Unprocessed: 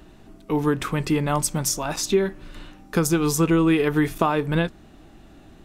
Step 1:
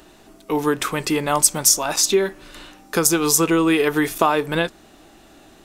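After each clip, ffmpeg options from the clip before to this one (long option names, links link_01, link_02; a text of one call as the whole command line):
ffmpeg -i in.wav -af "bass=frequency=250:gain=-12,treble=frequency=4000:gain=6,volume=4.5dB" out.wav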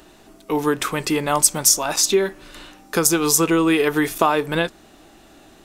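ffmpeg -i in.wav -af anull out.wav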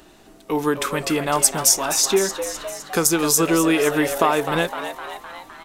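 ffmpeg -i in.wav -filter_complex "[0:a]asplit=8[link_01][link_02][link_03][link_04][link_05][link_06][link_07][link_08];[link_02]adelay=256,afreqshift=120,volume=-10dB[link_09];[link_03]adelay=512,afreqshift=240,volume=-14.3dB[link_10];[link_04]adelay=768,afreqshift=360,volume=-18.6dB[link_11];[link_05]adelay=1024,afreqshift=480,volume=-22.9dB[link_12];[link_06]adelay=1280,afreqshift=600,volume=-27.2dB[link_13];[link_07]adelay=1536,afreqshift=720,volume=-31.5dB[link_14];[link_08]adelay=1792,afreqshift=840,volume=-35.8dB[link_15];[link_01][link_09][link_10][link_11][link_12][link_13][link_14][link_15]amix=inputs=8:normalize=0,volume=-1dB" out.wav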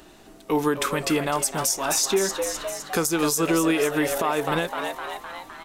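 ffmpeg -i in.wav -af "alimiter=limit=-12.5dB:level=0:latency=1:release=180" out.wav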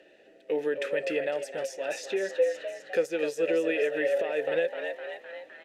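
ffmpeg -i in.wav -filter_complex "[0:a]asplit=3[link_01][link_02][link_03];[link_01]bandpass=frequency=530:width_type=q:width=8,volume=0dB[link_04];[link_02]bandpass=frequency=1840:width_type=q:width=8,volume=-6dB[link_05];[link_03]bandpass=frequency=2480:width_type=q:width=8,volume=-9dB[link_06];[link_04][link_05][link_06]amix=inputs=3:normalize=0,volume=6dB" out.wav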